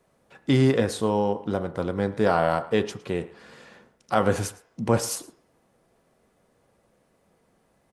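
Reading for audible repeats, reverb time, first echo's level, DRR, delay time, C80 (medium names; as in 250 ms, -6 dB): 1, 0.60 s, -21.0 dB, 8.0 dB, 111 ms, 16.0 dB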